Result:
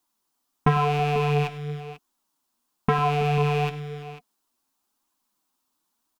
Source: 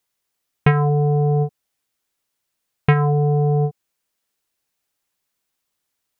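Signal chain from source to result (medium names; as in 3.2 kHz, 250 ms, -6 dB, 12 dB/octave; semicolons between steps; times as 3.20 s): rattle on loud lows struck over -27 dBFS, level -16 dBFS; ten-band graphic EQ 125 Hz -11 dB, 250 Hz +12 dB, 500 Hz -7 dB, 1 kHz +10 dB, 2 kHz -9 dB; multi-tap echo 101/329/493 ms -17/-18.5/-16 dB; flange 0.98 Hz, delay 2.6 ms, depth 6.2 ms, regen +49%; in parallel at +2 dB: peak limiter -22 dBFS, peak gain reduction 17 dB; on the sum: trim -2.5 dB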